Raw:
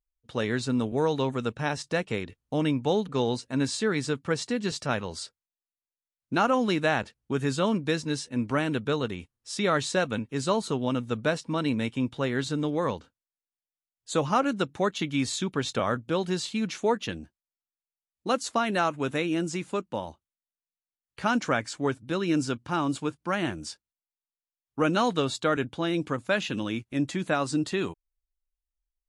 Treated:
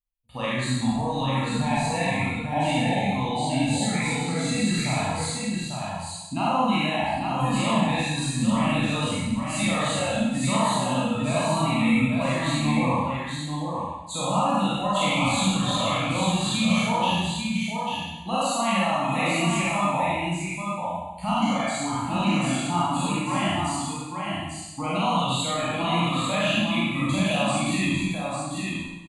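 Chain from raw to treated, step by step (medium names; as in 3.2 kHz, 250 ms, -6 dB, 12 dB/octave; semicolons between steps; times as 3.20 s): spectral sustain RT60 0.63 s; spectral noise reduction 15 dB; in parallel at -3 dB: compressor with a negative ratio -29 dBFS; on the sum: peak limiter -18 dBFS, peak gain reduction 11 dB; static phaser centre 1.5 kHz, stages 6; on a send: delay 845 ms -4.5 dB; on the sum: Schroeder reverb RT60 0.99 s, combs from 31 ms, DRR -6.5 dB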